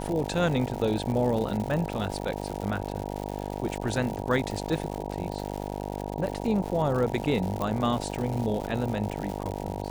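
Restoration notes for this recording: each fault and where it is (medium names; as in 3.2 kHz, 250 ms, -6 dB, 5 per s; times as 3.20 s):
buzz 50 Hz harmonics 19 -34 dBFS
crackle 200 per s -32 dBFS
7.62 s: pop -17 dBFS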